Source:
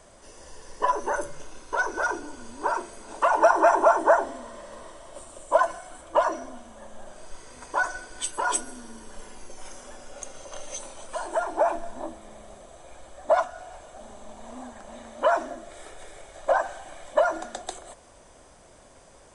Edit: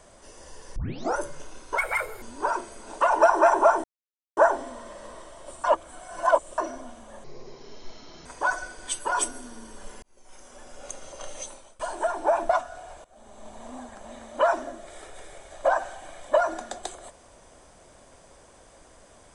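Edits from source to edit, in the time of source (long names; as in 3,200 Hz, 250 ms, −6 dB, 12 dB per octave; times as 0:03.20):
0:00.76: tape start 0.41 s
0:01.78–0:02.43: play speed 148%
0:04.05: splice in silence 0.53 s
0:05.32–0:06.26: reverse
0:06.92–0:07.58: play speed 65%
0:09.35–0:10.17: fade in
0:10.69–0:11.12: fade out, to −23.5 dB
0:11.82–0:13.33: remove
0:13.88–0:14.33: fade in, from −19 dB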